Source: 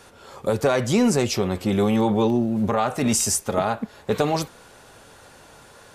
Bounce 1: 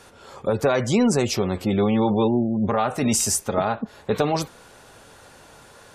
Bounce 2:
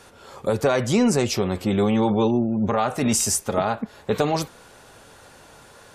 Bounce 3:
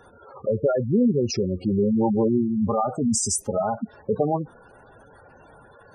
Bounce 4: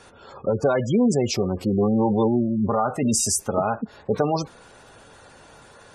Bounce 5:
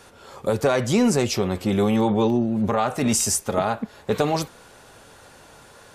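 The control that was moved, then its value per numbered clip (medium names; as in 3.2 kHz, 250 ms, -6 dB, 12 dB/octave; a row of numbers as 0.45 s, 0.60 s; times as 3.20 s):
spectral gate, under each frame's peak: -35 dB, -45 dB, -10 dB, -20 dB, -60 dB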